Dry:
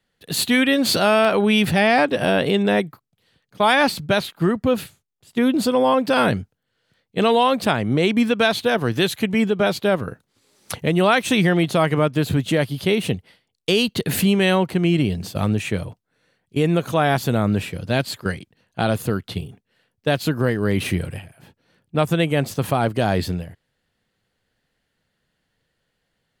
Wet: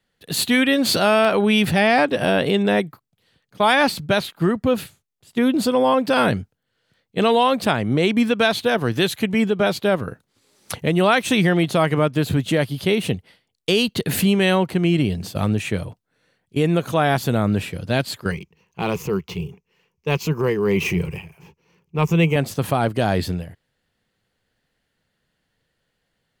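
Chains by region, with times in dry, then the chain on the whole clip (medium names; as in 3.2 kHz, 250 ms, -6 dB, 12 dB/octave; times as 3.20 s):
18.31–22.36 s: median filter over 3 samples + rippled EQ curve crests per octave 0.77, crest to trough 13 dB + transient shaper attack -6 dB, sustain 0 dB
whole clip: none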